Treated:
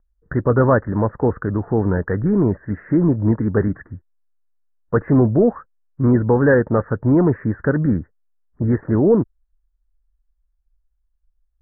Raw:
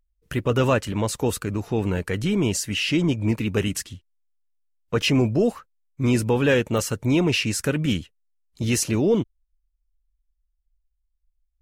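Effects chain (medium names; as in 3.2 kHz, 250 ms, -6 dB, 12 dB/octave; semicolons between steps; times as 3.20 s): steep low-pass 1.8 kHz 96 dB/octave; trim +5.5 dB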